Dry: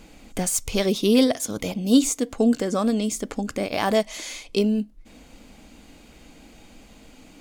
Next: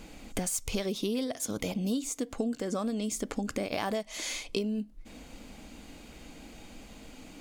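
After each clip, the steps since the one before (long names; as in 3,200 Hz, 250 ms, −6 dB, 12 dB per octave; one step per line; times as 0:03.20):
downward compressor 12 to 1, threshold −28 dBFS, peak gain reduction 17 dB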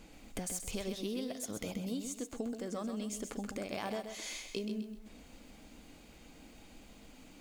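feedback echo at a low word length 129 ms, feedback 35%, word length 9 bits, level −7 dB
level −7.5 dB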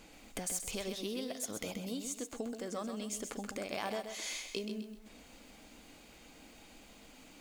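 low-shelf EQ 310 Hz −8 dB
level +2.5 dB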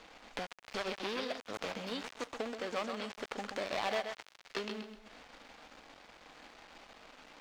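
gap after every zero crossing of 0.22 ms
three-way crossover with the lows and the highs turned down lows −12 dB, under 510 Hz, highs −20 dB, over 5,600 Hz
level +7.5 dB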